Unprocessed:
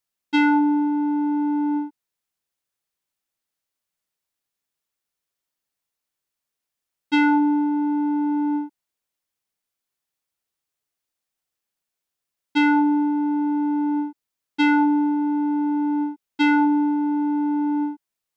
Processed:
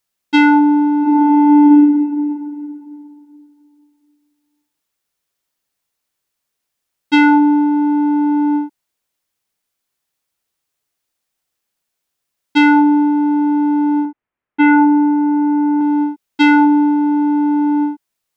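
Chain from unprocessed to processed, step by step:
0:01.00–0:01.61: thrown reverb, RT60 2.7 s, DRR −6 dB
0:14.05–0:15.81: low-pass filter 2,300 Hz 24 dB per octave
level +7.5 dB

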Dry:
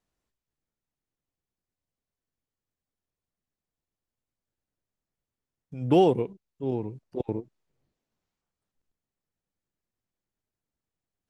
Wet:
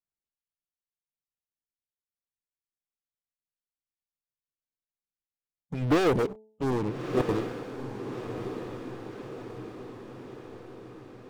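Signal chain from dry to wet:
leveller curve on the samples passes 5
harmonic and percussive parts rebalanced harmonic −7 dB
hum removal 216.8 Hz, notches 4
on a send: feedback delay with all-pass diffusion 1,272 ms, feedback 57%, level −8 dB
on the sum: level −7 dB

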